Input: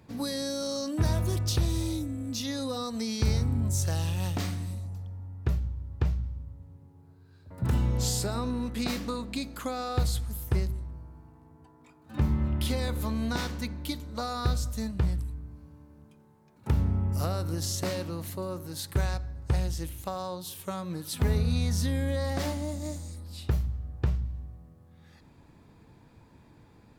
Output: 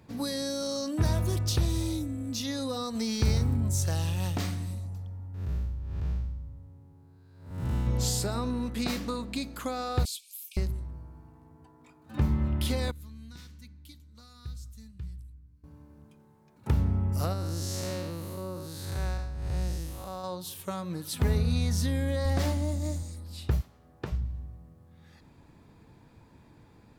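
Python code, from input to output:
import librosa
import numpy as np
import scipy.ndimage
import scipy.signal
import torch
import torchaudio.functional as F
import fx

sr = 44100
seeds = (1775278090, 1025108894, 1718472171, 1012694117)

y = fx.law_mismatch(x, sr, coded='mu', at=(2.95, 3.56))
y = fx.spec_blur(y, sr, span_ms=235.0, at=(5.34, 7.87))
y = fx.brickwall_highpass(y, sr, low_hz=2200.0, at=(10.05, 10.57))
y = fx.tone_stack(y, sr, knobs='6-0-2', at=(12.91, 15.64))
y = fx.spec_blur(y, sr, span_ms=233.0, at=(17.33, 20.24))
y = fx.low_shelf(y, sr, hz=84.0, db=11.5, at=(22.25, 23.03))
y = fx.highpass(y, sr, hz=fx.line((23.6, 450.0), (24.11, 200.0)), slope=12, at=(23.6, 24.11), fade=0.02)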